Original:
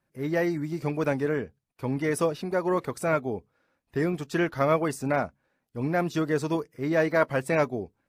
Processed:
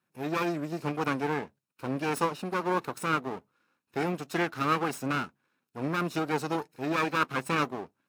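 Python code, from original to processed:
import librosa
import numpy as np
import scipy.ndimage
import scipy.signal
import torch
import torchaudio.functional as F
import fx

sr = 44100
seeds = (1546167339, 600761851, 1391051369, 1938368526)

y = fx.lower_of_two(x, sr, delay_ms=0.75)
y = scipy.signal.sosfilt(scipy.signal.butter(2, 180.0, 'highpass', fs=sr, output='sos'), y)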